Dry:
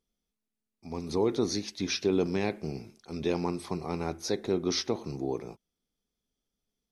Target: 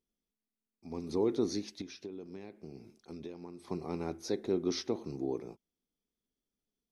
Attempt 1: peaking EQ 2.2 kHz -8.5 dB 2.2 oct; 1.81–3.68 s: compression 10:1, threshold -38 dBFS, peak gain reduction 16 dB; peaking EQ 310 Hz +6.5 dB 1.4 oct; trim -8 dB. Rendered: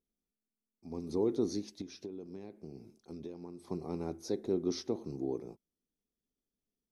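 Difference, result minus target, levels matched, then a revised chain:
2 kHz band -6.5 dB
1.81–3.68 s: compression 10:1, threshold -38 dBFS, peak gain reduction 16.5 dB; peaking EQ 310 Hz +6.5 dB 1.4 oct; trim -8 dB

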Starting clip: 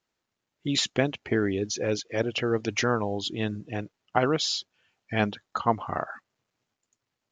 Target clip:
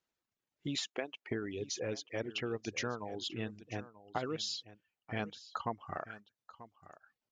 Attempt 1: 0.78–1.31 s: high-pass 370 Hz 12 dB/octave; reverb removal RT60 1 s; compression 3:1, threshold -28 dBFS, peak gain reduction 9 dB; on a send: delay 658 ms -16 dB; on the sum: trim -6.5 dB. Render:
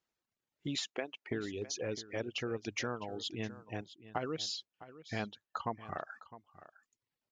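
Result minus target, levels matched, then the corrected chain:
echo 279 ms early
0.78–1.31 s: high-pass 370 Hz 12 dB/octave; reverb removal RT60 1 s; compression 3:1, threshold -28 dBFS, peak gain reduction 9 dB; on a send: delay 937 ms -16 dB; on the sum: trim -6.5 dB

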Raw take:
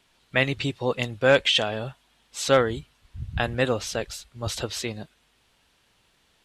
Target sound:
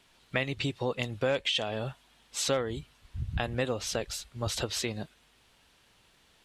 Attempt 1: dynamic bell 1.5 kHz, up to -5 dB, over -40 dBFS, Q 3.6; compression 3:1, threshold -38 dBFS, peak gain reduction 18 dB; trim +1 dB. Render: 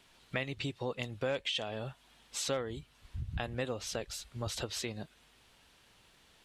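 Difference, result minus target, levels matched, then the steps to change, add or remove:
compression: peak gain reduction +5.5 dB
change: compression 3:1, threshold -29.5 dBFS, peak gain reduction 12 dB

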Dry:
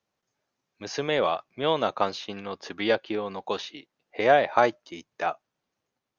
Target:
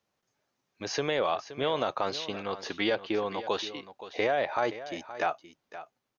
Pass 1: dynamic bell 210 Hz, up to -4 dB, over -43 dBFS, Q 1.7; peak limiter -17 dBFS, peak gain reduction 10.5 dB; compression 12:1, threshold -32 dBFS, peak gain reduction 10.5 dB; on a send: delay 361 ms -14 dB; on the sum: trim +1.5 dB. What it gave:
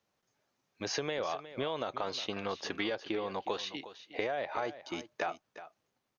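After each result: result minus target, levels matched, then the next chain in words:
compression: peak gain reduction +7.5 dB; echo 161 ms early
dynamic bell 210 Hz, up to -4 dB, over -43 dBFS, Q 1.7; peak limiter -17 dBFS, peak gain reduction 10.5 dB; compression 12:1, threshold -23.5 dBFS, peak gain reduction 3 dB; on a send: delay 361 ms -14 dB; on the sum: trim +1.5 dB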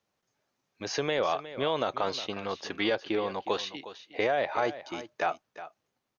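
echo 161 ms early
dynamic bell 210 Hz, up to -4 dB, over -43 dBFS, Q 1.7; peak limiter -17 dBFS, peak gain reduction 10.5 dB; compression 12:1, threshold -23.5 dBFS, peak gain reduction 3 dB; on a send: delay 522 ms -14 dB; on the sum: trim +1.5 dB

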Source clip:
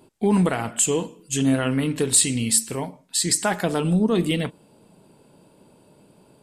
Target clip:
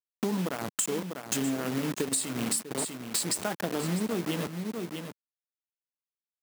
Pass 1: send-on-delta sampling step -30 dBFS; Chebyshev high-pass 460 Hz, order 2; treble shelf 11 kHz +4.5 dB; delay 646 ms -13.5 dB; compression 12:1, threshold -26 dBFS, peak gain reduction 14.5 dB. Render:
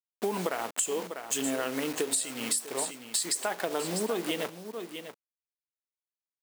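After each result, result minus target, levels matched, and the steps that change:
send-on-delta sampling: distortion -8 dB; 250 Hz band -4.5 dB
change: send-on-delta sampling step -22 dBFS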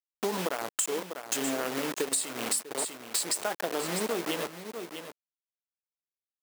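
250 Hz band -5.5 dB
change: Chebyshev high-pass 200 Hz, order 2

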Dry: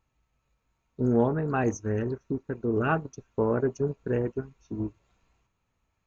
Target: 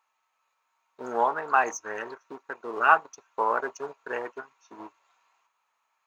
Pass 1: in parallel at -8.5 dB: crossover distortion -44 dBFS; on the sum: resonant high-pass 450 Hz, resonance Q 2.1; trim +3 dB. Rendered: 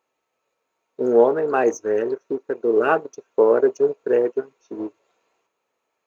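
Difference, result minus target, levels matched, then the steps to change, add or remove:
500 Hz band +9.0 dB
change: resonant high-pass 970 Hz, resonance Q 2.1

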